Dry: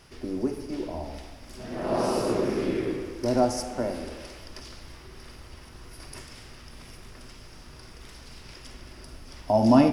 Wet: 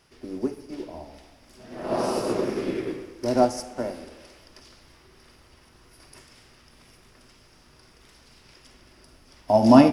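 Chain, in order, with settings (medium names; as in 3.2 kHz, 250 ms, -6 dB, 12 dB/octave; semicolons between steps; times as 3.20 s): bass shelf 98 Hz -8 dB; upward expansion 1.5:1, over -39 dBFS; trim +6 dB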